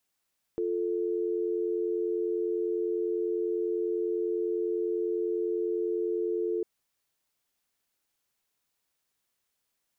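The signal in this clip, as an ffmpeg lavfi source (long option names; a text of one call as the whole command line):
ffmpeg -f lavfi -i "aevalsrc='0.0335*(sin(2*PI*350*t)+sin(2*PI*440*t))':duration=6.05:sample_rate=44100" out.wav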